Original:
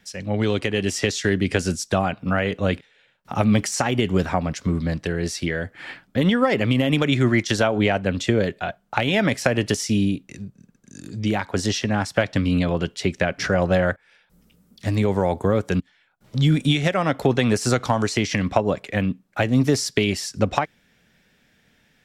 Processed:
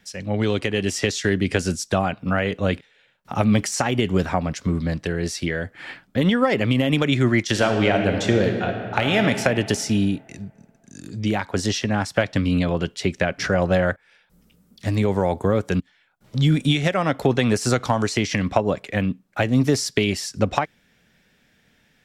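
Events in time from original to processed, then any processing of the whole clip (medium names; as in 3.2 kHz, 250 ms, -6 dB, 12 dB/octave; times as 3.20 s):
7.48–9.21 s: reverb throw, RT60 2.4 s, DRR 4 dB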